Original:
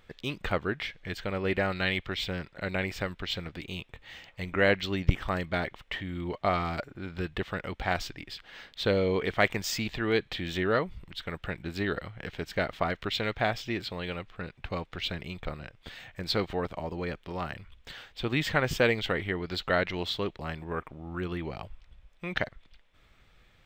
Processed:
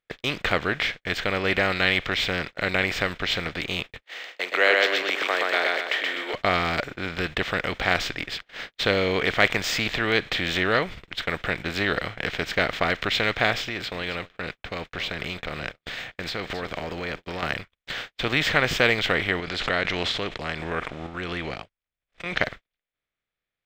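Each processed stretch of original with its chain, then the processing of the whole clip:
0:04.03–0:06.34: Butterworth high-pass 380 Hz + repeating echo 124 ms, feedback 28%, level −3 dB
0:13.67–0:17.43: downward compressor, threshold −37 dBFS + single-tap delay 268 ms −18 dB
0:19.40–0:22.41: low-pass filter 11,000 Hz 24 dB per octave + sample-and-hold tremolo 4.2 Hz, depth 70% + background raised ahead of every attack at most 54 dB per second
whole clip: compressor on every frequency bin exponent 0.6; noise gate −34 dBFS, range −47 dB; parametric band 2,600 Hz +6.5 dB 2.1 octaves; level −1 dB

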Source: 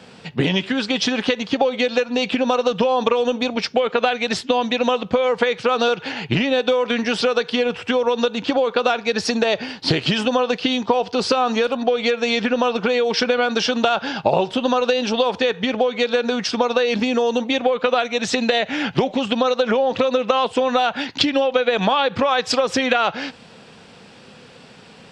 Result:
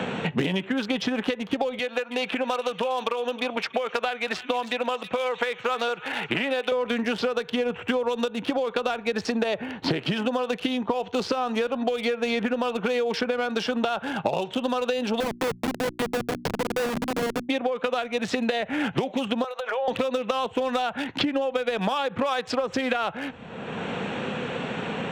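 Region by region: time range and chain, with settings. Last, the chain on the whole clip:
0:01.79–0:06.72: high-pass filter 900 Hz 6 dB per octave + delay with a high-pass on its return 318 ms, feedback 46%, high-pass 3,300 Hz, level −6 dB
0:15.20–0:17.49: comparator with hysteresis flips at −16.5 dBFS + mains-hum notches 60/120/180/240/300/360 Hz
0:19.44–0:19.88: high-pass filter 550 Hz 24 dB per octave + downward compressor 12 to 1, threshold −22 dBFS
whole clip: adaptive Wiener filter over 9 samples; high-shelf EQ 6,300 Hz −4.5 dB; multiband upward and downward compressor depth 100%; level −6.5 dB

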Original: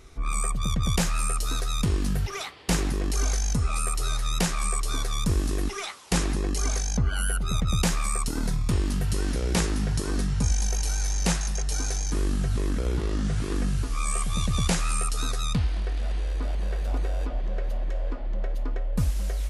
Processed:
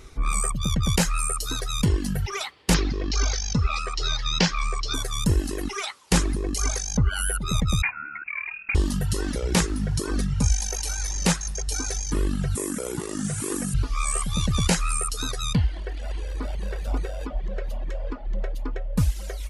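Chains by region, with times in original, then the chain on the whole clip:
0:02.74–0:04.94: Butterworth low-pass 5,500 Hz + high-shelf EQ 3,300 Hz +8.5 dB
0:07.82–0:08.75: high-pass filter 220 Hz + voice inversion scrambler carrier 2,600 Hz + parametric band 410 Hz −13.5 dB 1.6 octaves
0:12.55–0:13.74: high-pass filter 130 Hz + high shelf with overshoot 6,100 Hz +12 dB, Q 1.5
whole clip: reverb reduction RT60 1.8 s; notch filter 700 Hz, Q 12; level +4.5 dB

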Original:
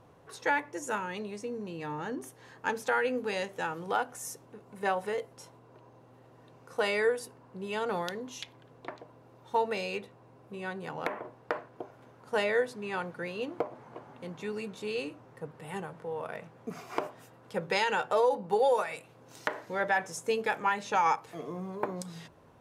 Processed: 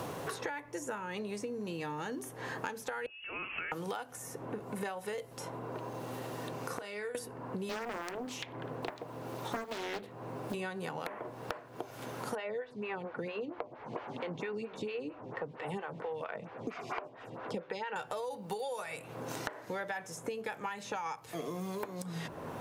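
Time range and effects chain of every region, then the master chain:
0:03.06–0:03.72: low-shelf EQ 290 Hz −9.5 dB + downward compressor 12 to 1, threshold −47 dBFS + voice inversion scrambler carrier 3,100 Hz
0:06.75–0:07.15: gate with flip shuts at −31 dBFS, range −24 dB + double-tracking delay 34 ms −12.5 dB + highs frequency-modulated by the lows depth 0.3 ms
0:07.69–0:10.54: one scale factor per block 7 bits + high-pass filter 53 Hz 24 dB per octave + highs frequency-modulated by the lows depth 0.97 ms
0:12.35–0:17.96: low-pass filter 2,600 Hz + phaser with staggered stages 4.4 Hz
whole clip: downward compressor 3 to 1, threshold −45 dBFS; high-shelf EQ 11,000 Hz +9.5 dB; multiband upward and downward compressor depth 100%; level +5.5 dB

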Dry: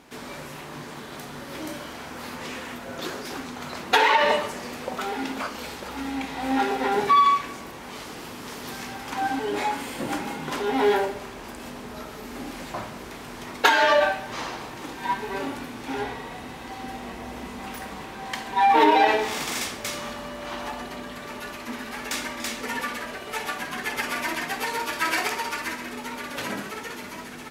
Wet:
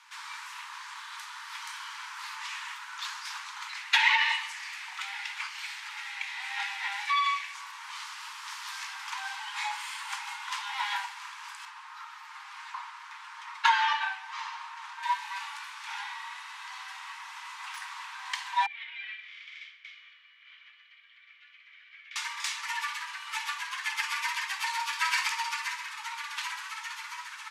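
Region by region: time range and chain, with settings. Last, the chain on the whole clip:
0:03.67–0:07.55: Chebyshev high-pass with heavy ripple 540 Hz, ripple 9 dB + high-shelf EQ 2,100 Hz +7 dB
0:11.65–0:15.03: Bessel high-pass filter 540 Hz + spectral tilt −3.5 dB per octave + comb filter 6.5 ms, depth 41%
0:18.66–0:22.16: formant filter i + high-frequency loss of the air 140 metres
whole clip: Butterworth high-pass 890 Hz 96 dB per octave; dynamic equaliser 1,400 Hz, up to −6 dB, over −41 dBFS, Q 2; low-pass filter 8,200 Hz 12 dB per octave

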